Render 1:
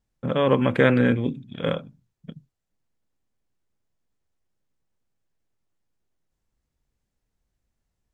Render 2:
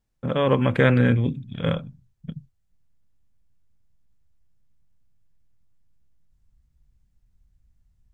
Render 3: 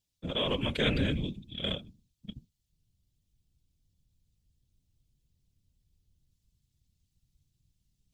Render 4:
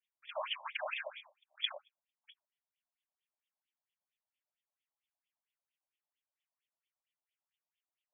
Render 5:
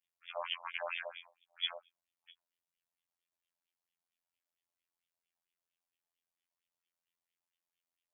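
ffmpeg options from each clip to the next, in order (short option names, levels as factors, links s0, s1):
-af "asubboost=boost=7.5:cutoff=150"
-af "afftfilt=real='hypot(re,im)*cos(2*PI*random(0))':imag='hypot(re,im)*sin(2*PI*random(1))':win_size=512:overlap=0.75,highshelf=f=2300:t=q:w=1.5:g=13.5,volume=0.562"
-af "afftfilt=real='re*between(b*sr/1024,760*pow(2600/760,0.5+0.5*sin(2*PI*4.4*pts/sr))/1.41,760*pow(2600/760,0.5+0.5*sin(2*PI*4.4*pts/sr))*1.41)':imag='im*between(b*sr/1024,760*pow(2600/760,0.5+0.5*sin(2*PI*4.4*pts/sr))/1.41,760*pow(2600/760,0.5+0.5*sin(2*PI*4.4*pts/sr))*1.41)':win_size=1024:overlap=0.75,volume=1.33"
-af "afftfilt=real='hypot(re,im)*cos(PI*b)':imag='0':win_size=2048:overlap=0.75,volume=1.41"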